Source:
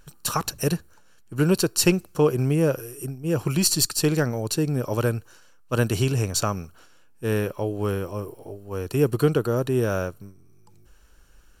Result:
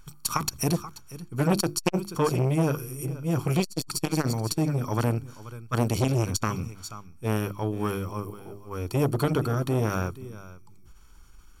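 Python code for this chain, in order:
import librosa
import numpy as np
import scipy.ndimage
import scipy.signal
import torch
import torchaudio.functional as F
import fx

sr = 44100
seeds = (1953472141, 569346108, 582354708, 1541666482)

y = fx.hum_notches(x, sr, base_hz=50, count=7)
y = y + 0.62 * np.pad(y, (int(0.9 * sr / 1000.0), 0))[:len(y)]
y = y + 10.0 ** (-16.0 / 20.0) * np.pad(y, (int(482 * sr / 1000.0), 0))[:len(y)]
y = fx.transformer_sat(y, sr, knee_hz=970.0)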